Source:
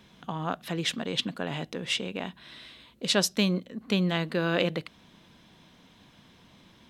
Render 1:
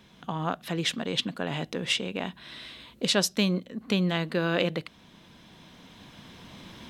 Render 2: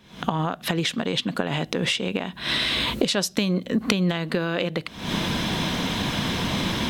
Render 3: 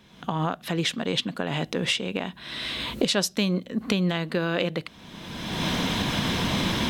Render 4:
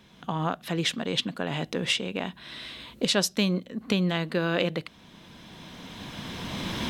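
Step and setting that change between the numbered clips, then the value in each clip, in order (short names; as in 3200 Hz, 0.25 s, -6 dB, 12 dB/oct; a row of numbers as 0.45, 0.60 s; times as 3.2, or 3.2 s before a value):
recorder AGC, rising by: 5.1, 84, 32, 12 dB/s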